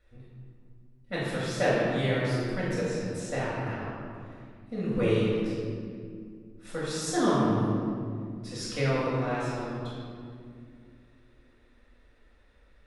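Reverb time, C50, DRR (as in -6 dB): 2.2 s, -2.5 dB, -8.0 dB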